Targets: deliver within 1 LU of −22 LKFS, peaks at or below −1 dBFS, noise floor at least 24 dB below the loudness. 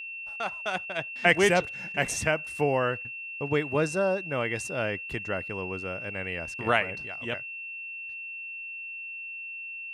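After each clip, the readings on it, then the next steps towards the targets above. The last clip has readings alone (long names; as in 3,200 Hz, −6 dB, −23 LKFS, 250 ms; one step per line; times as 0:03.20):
interfering tone 2,700 Hz; level of the tone −36 dBFS; integrated loudness −29.0 LKFS; sample peak −6.0 dBFS; target loudness −22.0 LKFS
→ notch filter 2,700 Hz, Q 30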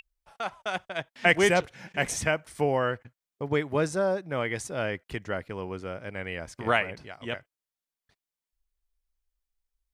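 interfering tone none found; integrated loudness −29.0 LKFS; sample peak −6.0 dBFS; target loudness −22.0 LKFS
→ level +7 dB
brickwall limiter −1 dBFS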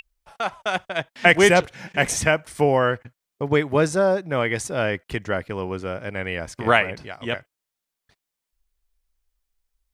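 integrated loudness −22.0 LKFS; sample peak −1.0 dBFS; background noise floor −84 dBFS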